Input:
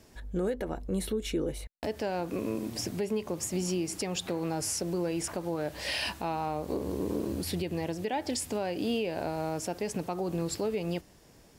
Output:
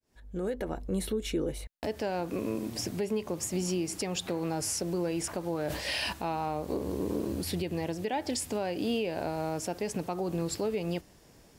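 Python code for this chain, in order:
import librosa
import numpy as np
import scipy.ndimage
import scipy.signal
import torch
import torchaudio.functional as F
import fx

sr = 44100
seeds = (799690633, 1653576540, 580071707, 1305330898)

y = fx.fade_in_head(x, sr, length_s=0.61)
y = fx.sustainer(y, sr, db_per_s=49.0, at=(5.5, 6.13))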